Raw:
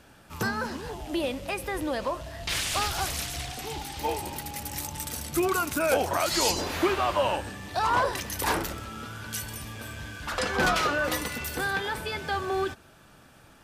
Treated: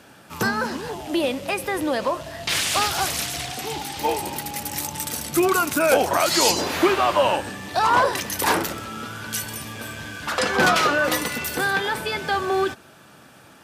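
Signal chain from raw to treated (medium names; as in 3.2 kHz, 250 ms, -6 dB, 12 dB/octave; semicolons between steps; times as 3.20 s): high-pass 130 Hz 12 dB/octave; trim +6.5 dB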